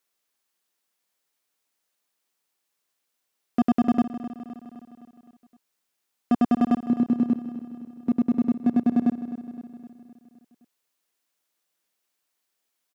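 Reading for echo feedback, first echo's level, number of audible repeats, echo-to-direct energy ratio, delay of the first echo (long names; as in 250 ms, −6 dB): 57%, −13.0 dB, 5, −11.5 dB, 258 ms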